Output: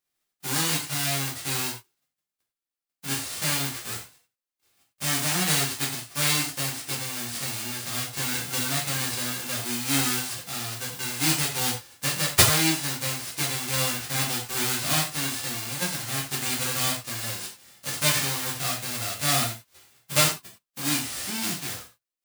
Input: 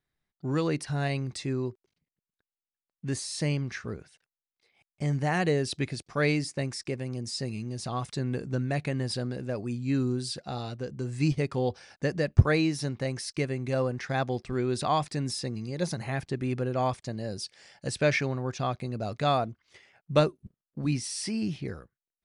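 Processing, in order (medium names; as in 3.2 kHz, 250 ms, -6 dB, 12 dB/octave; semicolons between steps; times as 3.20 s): formants flattened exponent 0.1; gated-style reverb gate 130 ms falling, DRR -4.5 dB; trim -4 dB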